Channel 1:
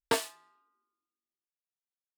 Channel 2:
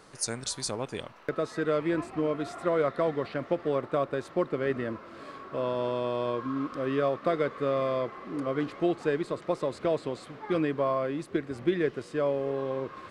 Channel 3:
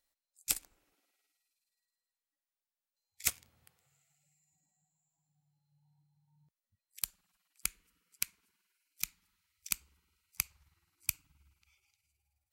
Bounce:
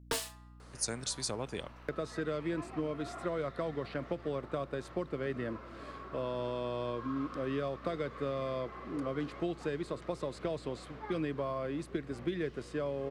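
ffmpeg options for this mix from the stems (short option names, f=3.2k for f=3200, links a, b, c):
-filter_complex "[0:a]volume=23.5dB,asoftclip=hard,volume=-23.5dB,volume=-0.5dB[a];[1:a]adelay=600,volume=-3dB[b];[a][b]amix=inputs=2:normalize=0,acrossover=split=190|3000[c][d][e];[d]acompressor=threshold=-33dB:ratio=6[f];[c][f][e]amix=inputs=3:normalize=0,aeval=exprs='val(0)+0.00224*(sin(2*PI*60*n/s)+sin(2*PI*2*60*n/s)/2+sin(2*PI*3*60*n/s)/3+sin(2*PI*4*60*n/s)/4+sin(2*PI*5*60*n/s)/5)':c=same"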